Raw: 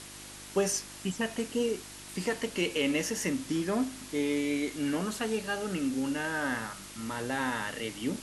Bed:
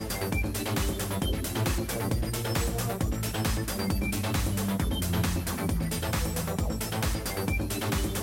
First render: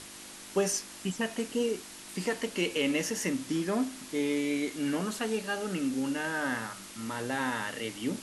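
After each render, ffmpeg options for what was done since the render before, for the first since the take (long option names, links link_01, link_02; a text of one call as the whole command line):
ffmpeg -i in.wav -af "bandreject=frequency=50:width_type=h:width=4,bandreject=frequency=100:width_type=h:width=4,bandreject=frequency=150:width_type=h:width=4" out.wav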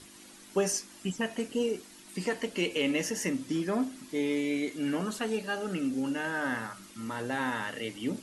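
ffmpeg -i in.wav -af "afftdn=noise_reduction=9:noise_floor=-47" out.wav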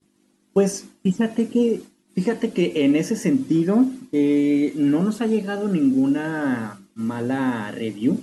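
ffmpeg -i in.wav -af "agate=range=-33dB:threshold=-39dB:ratio=3:detection=peak,equalizer=frequency=200:width=0.38:gain=14" out.wav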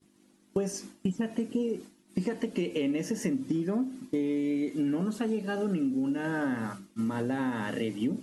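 ffmpeg -i in.wav -af "acompressor=threshold=-27dB:ratio=6" out.wav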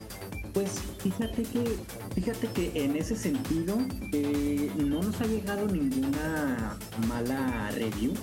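ffmpeg -i in.wav -i bed.wav -filter_complex "[1:a]volume=-9.5dB[link_01];[0:a][link_01]amix=inputs=2:normalize=0" out.wav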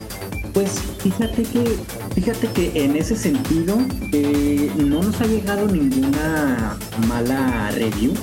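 ffmpeg -i in.wav -af "volume=10.5dB" out.wav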